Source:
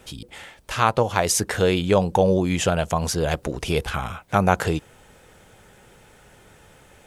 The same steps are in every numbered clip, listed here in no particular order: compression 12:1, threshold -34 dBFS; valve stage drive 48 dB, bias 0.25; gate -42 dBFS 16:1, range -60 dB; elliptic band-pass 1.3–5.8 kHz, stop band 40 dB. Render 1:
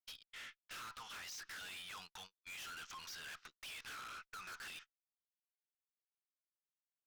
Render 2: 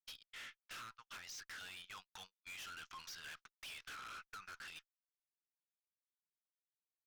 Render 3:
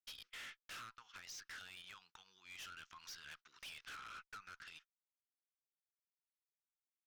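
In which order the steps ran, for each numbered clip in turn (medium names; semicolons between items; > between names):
elliptic band-pass > gate > valve stage > compression; elliptic band-pass > compression > gate > valve stage; compression > gate > elliptic band-pass > valve stage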